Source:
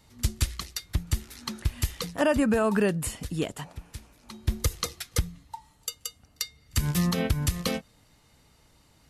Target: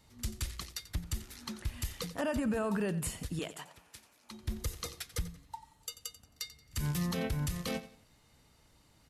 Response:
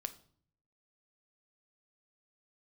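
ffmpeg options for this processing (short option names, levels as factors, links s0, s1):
-filter_complex "[0:a]asettb=1/sr,asplit=3[s0][s1][s2];[s0]atrim=end=3.394[s3];[s1]atrim=start=3.39:end=4.31,asetpts=PTS-STARTPTS,afade=t=in:d=0.004:c=qsin,afade=t=out:st=0.916:d=0.004:c=qsin,highpass=f=680:p=1[s4];[s2]atrim=start=4.306[s5];[s3][s4]acrossfade=d=0.004:c1=hsin:c2=qsin[s6];[s6][s5]acrossfade=d=0.004:c1=qsin:c2=hsin,alimiter=limit=0.0891:level=0:latency=1:release=20,asplit=2[s7][s8];[s8]aecho=0:1:89|178|267:0.178|0.0569|0.0182[s9];[s7][s9]amix=inputs=2:normalize=0,volume=0.596"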